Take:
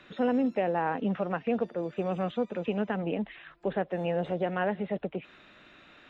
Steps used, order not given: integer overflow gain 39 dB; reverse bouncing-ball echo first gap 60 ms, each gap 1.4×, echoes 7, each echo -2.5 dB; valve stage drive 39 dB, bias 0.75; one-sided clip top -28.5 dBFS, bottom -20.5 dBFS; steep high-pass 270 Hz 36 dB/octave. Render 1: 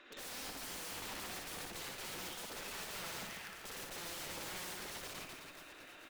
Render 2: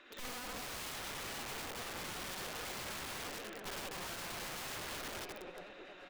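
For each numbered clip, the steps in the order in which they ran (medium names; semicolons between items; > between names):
steep high-pass > one-sided clip > integer overflow > valve stage > reverse bouncing-ball echo; one-sided clip > steep high-pass > valve stage > reverse bouncing-ball echo > integer overflow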